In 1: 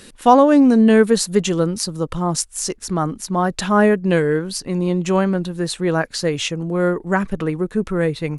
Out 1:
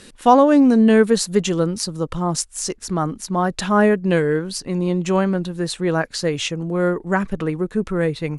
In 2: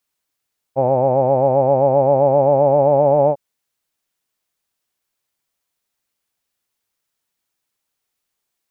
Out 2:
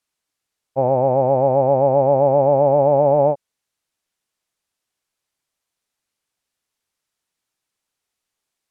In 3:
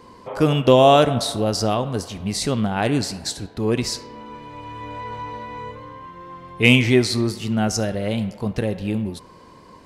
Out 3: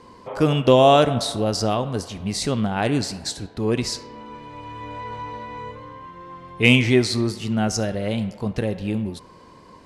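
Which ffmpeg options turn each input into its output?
-af "lowpass=11k,volume=-1dB"

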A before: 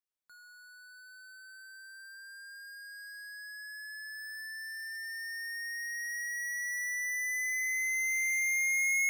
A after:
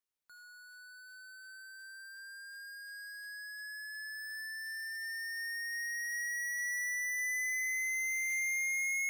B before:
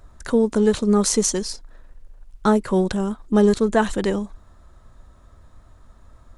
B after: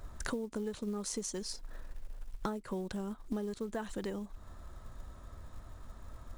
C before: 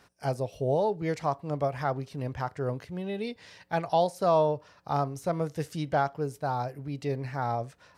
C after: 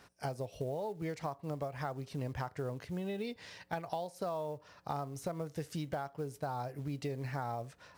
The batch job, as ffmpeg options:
-af "acompressor=threshold=-34dB:ratio=20,acrusher=bits=7:mode=log:mix=0:aa=0.000001"

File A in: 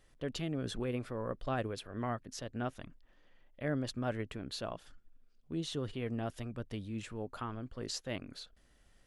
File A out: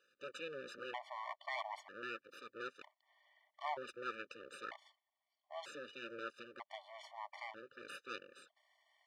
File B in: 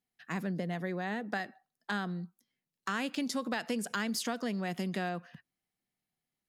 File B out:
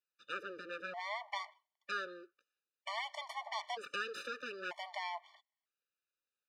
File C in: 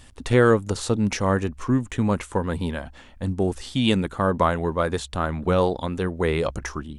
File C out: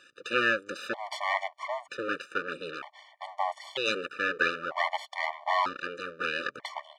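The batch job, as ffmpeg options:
-af "aeval=exprs='abs(val(0))':c=same,highpass=670,lowpass=3.9k,afftfilt=real='re*gt(sin(2*PI*0.53*pts/sr)*(1-2*mod(floor(b*sr/1024/590),2)),0)':imag='im*gt(sin(2*PI*0.53*pts/sr)*(1-2*mod(floor(b*sr/1024/590),2)),0)':win_size=1024:overlap=0.75,volume=4dB"

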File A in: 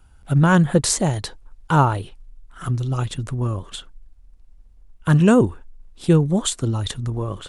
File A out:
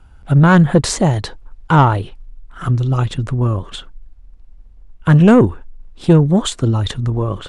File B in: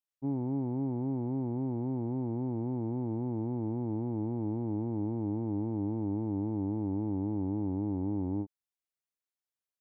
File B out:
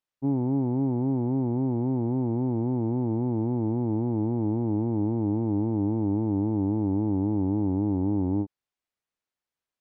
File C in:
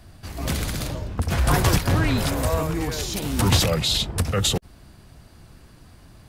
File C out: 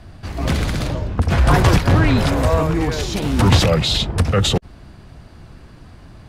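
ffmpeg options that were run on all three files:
-af "aemphasis=mode=reproduction:type=50fm,acontrast=73"

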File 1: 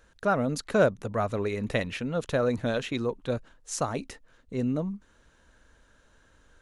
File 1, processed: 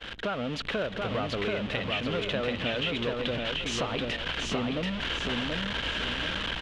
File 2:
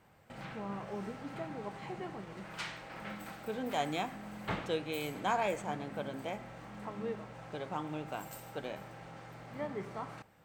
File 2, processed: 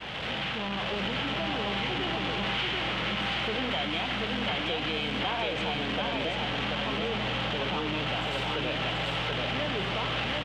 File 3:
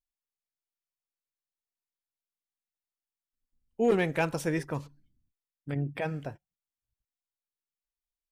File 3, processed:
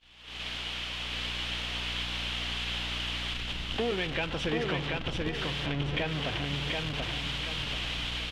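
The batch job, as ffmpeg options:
-filter_complex "[0:a]aeval=exprs='val(0)+0.5*0.0398*sgn(val(0))':c=same,lowpass=f=3.1k:t=q:w=4.2,lowshelf=f=82:g=-9,asplit=2[a][b];[b]adelay=139.9,volume=-25dB,highshelf=f=4k:g=-3.15[c];[a][c]amix=inputs=2:normalize=0,aeval=exprs='val(0)+0.00447*(sin(2*PI*60*n/s)+sin(2*PI*2*60*n/s)/2+sin(2*PI*3*60*n/s)/3+sin(2*PI*4*60*n/s)/4+sin(2*PI*5*60*n/s)/5)':c=same,dynaudnorm=f=120:g=5:m=7.5dB,agate=range=-33dB:threshold=-27dB:ratio=3:detection=peak,acompressor=threshold=-29dB:ratio=5,asplit=2[d][e];[e]aecho=0:1:733|1466|2199|2932|3665:0.708|0.269|0.102|0.0388|0.0148[f];[d][f]amix=inputs=2:normalize=0,volume=-1.5dB"

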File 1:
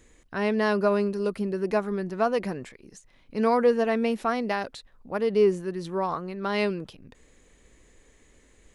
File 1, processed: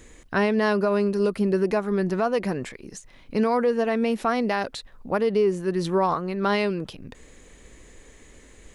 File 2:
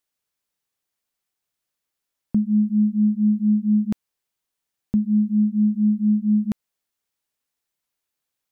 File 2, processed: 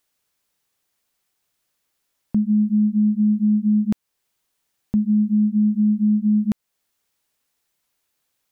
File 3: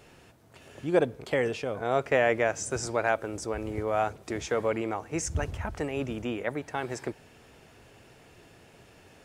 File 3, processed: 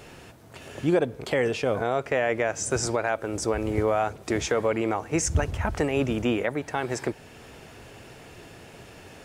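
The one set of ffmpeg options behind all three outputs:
-af "alimiter=limit=-21.5dB:level=0:latency=1:release=367,volume=8.5dB"

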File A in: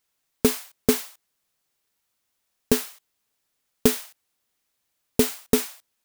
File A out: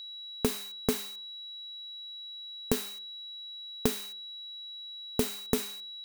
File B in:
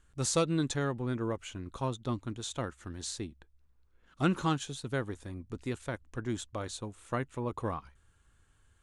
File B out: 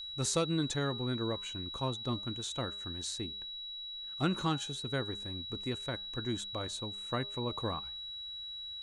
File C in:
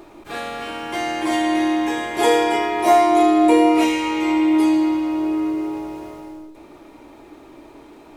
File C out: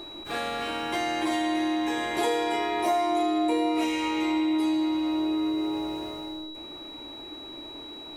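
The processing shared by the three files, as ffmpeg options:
-af "acompressor=threshold=-24dB:ratio=3,aeval=exprs='val(0)+0.0112*sin(2*PI*3900*n/s)':c=same,bandreject=f=203.7:t=h:w=4,bandreject=f=407.4:t=h:w=4,bandreject=f=611.1:t=h:w=4,bandreject=f=814.8:t=h:w=4,bandreject=f=1.0185k:t=h:w=4,bandreject=f=1.2222k:t=h:w=4,bandreject=f=1.4259k:t=h:w=4,bandreject=f=1.6296k:t=h:w=4,volume=-1.5dB"

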